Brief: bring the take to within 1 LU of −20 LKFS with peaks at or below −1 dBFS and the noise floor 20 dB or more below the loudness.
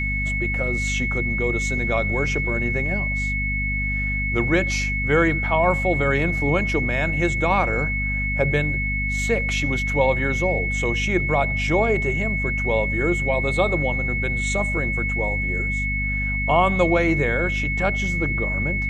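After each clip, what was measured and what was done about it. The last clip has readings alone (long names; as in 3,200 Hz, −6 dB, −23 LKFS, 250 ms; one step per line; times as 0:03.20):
mains hum 50 Hz; hum harmonics up to 250 Hz; level of the hum −24 dBFS; interfering tone 2,200 Hz; level of the tone −24 dBFS; integrated loudness −21.5 LKFS; sample peak −4.5 dBFS; target loudness −20.0 LKFS
→ hum removal 50 Hz, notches 5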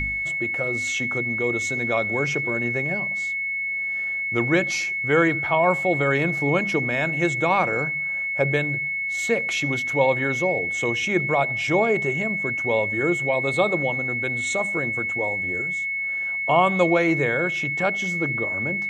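mains hum none found; interfering tone 2,200 Hz; level of the tone −24 dBFS
→ notch filter 2,200 Hz, Q 30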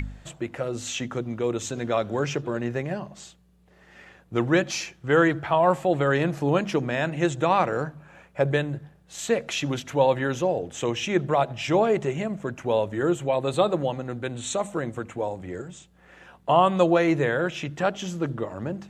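interfering tone none found; integrated loudness −25.5 LKFS; sample peak −5.5 dBFS; target loudness −20.0 LKFS
→ level +5.5 dB
brickwall limiter −1 dBFS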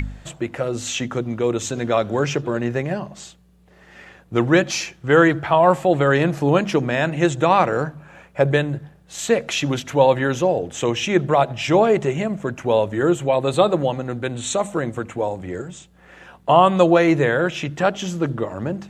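integrated loudness −20.0 LKFS; sample peak −1.0 dBFS; background noise floor −51 dBFS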